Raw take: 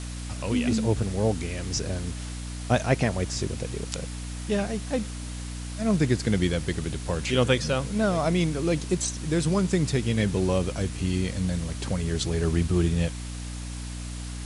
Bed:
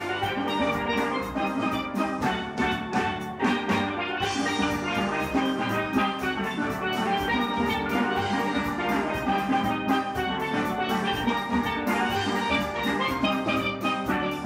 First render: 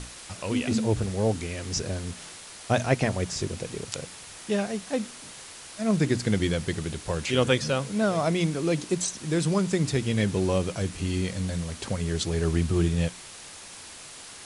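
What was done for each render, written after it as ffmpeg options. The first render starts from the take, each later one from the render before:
-af "bandreject=f=60:t=h:w=6,bandreject=f=120:t=h:w=6,bandreject=f=180:t=h:w=6,bandreject=f=240:t=h:w=6,bandreject=f=300:t=h:w=6"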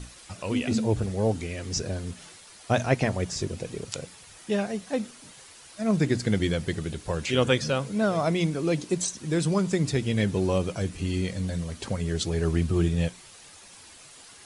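-af "afftdn=nr=8:nf=-44"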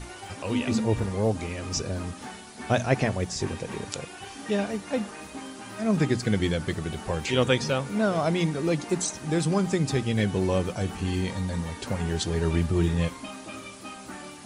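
-filter_complex "[1:a]volume=-14.5dB[a];[0:a][a]amix=inputs=2:normalize=0"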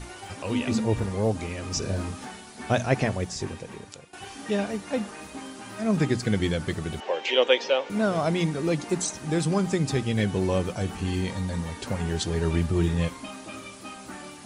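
-filter_complex "[0:a]asettb=1/sr,asplit=3[a][b][c];[a]atrim=end=1.794[d];[b]atrim=start=1.79:end=2.25,asetpts=PTS-STARTPTS,afade=t=in:d=0.004:c=qsin,afade=t=out:st=0.456:d=0.004:c=qsin,asplit=2[e][f];[f]adelay=31,volume=-3dB[g];[e][g]amix=inputs=2:normalize=0,atrim=end_sample=20286[h];[c]atrim=start=2.246[i];[d][h]acrossfade=d=0.004:c1=hsin:c2=qsin[j];[j][i]acrossfade=d=0.004:c1=qsin:c2=hsin,asettb=1/sr,asplit=3[k][l][m];[k]atrim=end=7.004[n];[l]atrim=start=7:end=7.9,asetpts=PTS-STARTPTS,afade=t=in:d=0.004:c=qsin,afade=t=out:st=0.896:d=0.004:c=qsin,highpass=f=350:w=0.5412,highpass=f=350:w=1.3066,equalizer=f=550:t=q:w=4:g=6,equalizer=f=840:t=q:w=4:g=3,equalizer=f=1.3k:t=q:w=4:g=-4,equalizer=f=2.1k:t=q:w=4:g=3,equalizer=f=3k:t=q:w=4:g=7,equalizer=f=4.6k:t=q:w=4:g=-4,lowpass=f=5.5k:w=0.5412,lowpass=f=5.5k:w=1.3066[o];[m]atrim=start=7.896[p];[n][o]acrossfade=d=0.004:c1=hsin:c2=qsin[q];[q][p]acrossfade=d=0.004:c1=qsin:c2=hsin,asplit=2[r][s];[r]atrim=end=4.13,asetpts=PTS-STARTPTS,afade=t=out:st=3.12:d=1.01:silence=0.158489[t];[s]atrim=start=4.13,asetpts=PTS-STARTPTS,afade=t=in:d=0.004:c=hsin:silence=0.158489[u];[t][u]concat=n=2:v=0:a=1"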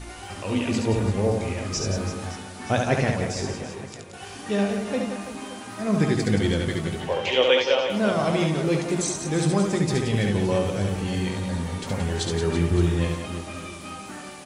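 -filter_complex "[0:a]asplit=2[a][b];[b]adelay=20,volume=-11dB[c];[a][c]amix=inputs=2:normalize=0,aecho=1:1:70|175|332.5|568.8|923.1:0.631|0.398|0.251|0.158|0.1"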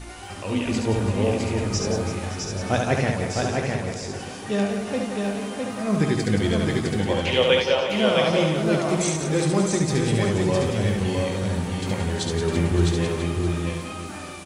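-af "aecho=1:1:658:0.668"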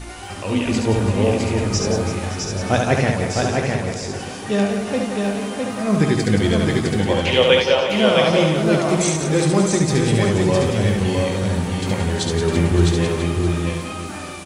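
-af "volume=4.5dB"

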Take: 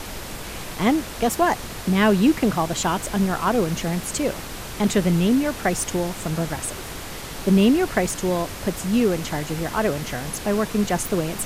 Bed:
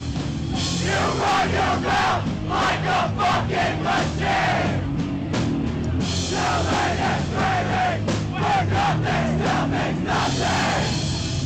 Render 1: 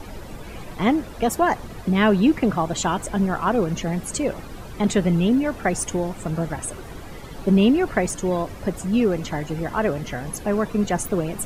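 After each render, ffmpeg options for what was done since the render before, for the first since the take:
-af "afftdn=nr=13:nf=-34"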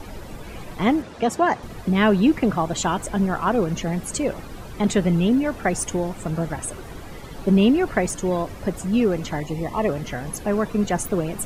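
-filter_complex "[0:a]asettb=1/sr,asplit=3[a][b][c];[a]atrim=end=1.024[d];[b]atrim=start=1.02:end=1.63,asetpts=PTS-STARTPTS,afade=t=in:d=0.004:c=qsin,afade=t=out:st=0.606:d=0.004:c=qsin,highpass=100,lowpass=7.2k[e];[c]atrim=start=1.626[f];[d][e]acrossfade=d=0.004:c1=hsin:c2=qsin[g];[g][f]acrossfade=d=0.004:c1=qsin:c2=hsin,asettb=1/sr,asplit=3[h][i][j];[h]atrim=end=9.404[k];[i]atrim=start=9.4:end=9.89,asetpts=PTS-STARTPTS,afade=t=in:d=0.004:c=qsin,afade=t=out:st=0.486:d=0.004:c=qsin,asuperstop=centerf=1500:order=8:qfactor=2.9[l];[j]atrim=start=9.886[m];[k][l]acrossfade=d=0.004:c1=hsin:c2=qsin[n];[n][m]acrossfade=d=0.004:c1=qsin:c2=hsin"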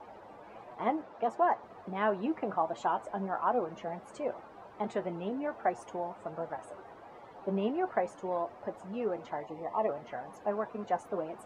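-af "bandpass=f=790:t=q:w=1.7:csg=0,flanger=delay=8:depth=2.5:regen=57:speed=1.4:shape=triangular"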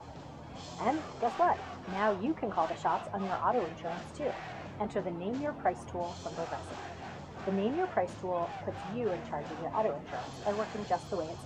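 -filter_complex "[1:a]volume=-23dB[a];[0:a][a]amix=inputs=2:normalize=0"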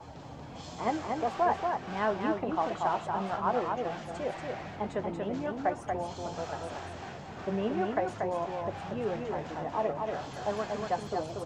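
-af "aecho=1:1:235:0.631"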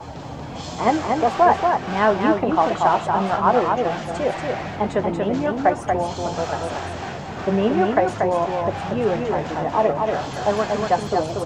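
-af "volume=12dB"

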